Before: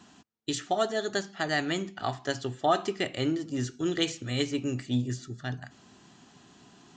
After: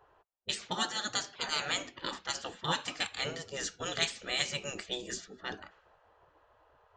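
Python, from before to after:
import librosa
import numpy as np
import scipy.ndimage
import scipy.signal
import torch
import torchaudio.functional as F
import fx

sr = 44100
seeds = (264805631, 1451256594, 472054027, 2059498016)

y = fx.env_lowpass(x, sr, base_hz=680.0, full_db=-26.5)
y = fx.spec_gate(y, sr, threshold_db=-15, keep='weak')
y = y * librosa.db_to_amplitude(5.0)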